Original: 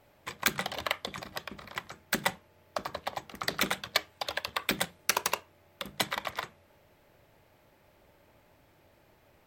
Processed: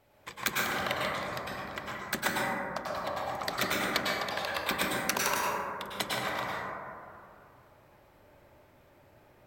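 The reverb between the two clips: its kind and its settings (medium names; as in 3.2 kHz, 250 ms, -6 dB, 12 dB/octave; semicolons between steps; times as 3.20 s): plate-style reverb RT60 2.4 s, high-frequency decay 0.25×, pre-delay 90 ms, DRR -5.5 dB; trim -4 dB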